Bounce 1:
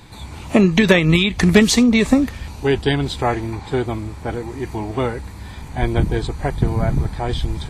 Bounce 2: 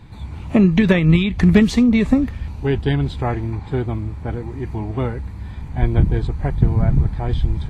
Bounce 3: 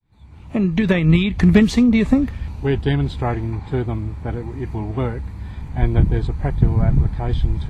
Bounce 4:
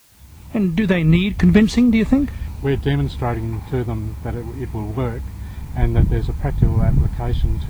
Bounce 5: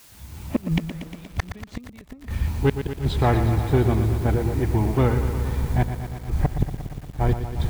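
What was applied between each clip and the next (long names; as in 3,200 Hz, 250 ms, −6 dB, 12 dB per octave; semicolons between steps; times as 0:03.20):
bass and treble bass +9 dB, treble −10 dB; level −5 dB
fade in at the beginning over 1.18 s
background noise white −53 dBFS
gate with flip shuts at −10 dBFS, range −34 dB; in parallel at −7.5 dB: wave folding −17.5 dBFS; on the sum: feedback echo at a low word length 118 ms, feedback 80%, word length 7 bits, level −9.5 dB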